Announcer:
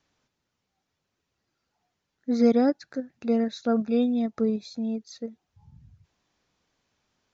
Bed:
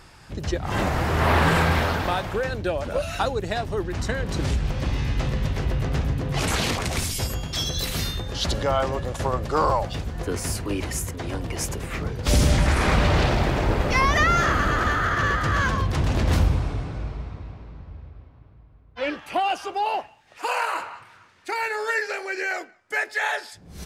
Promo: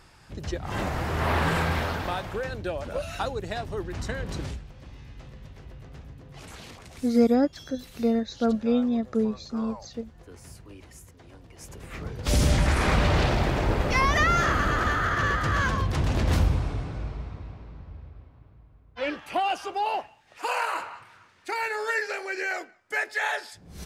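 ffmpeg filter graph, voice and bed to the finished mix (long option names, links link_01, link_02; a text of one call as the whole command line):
ffmpeg -i stem1.wav -i stem2.wav -filter_complex "[0:a]adelay=4750,volume=0dB[link_01];[1:a]volume=12dB,afade=type=out:start_time=4.32:duration=0.33:silence=0.188365,afade=type=in:start_time=11.57:duration=0.91:silence=0.133352[link_02];[link_01][link_02]amix=inputs=2:normalize=0" out.wav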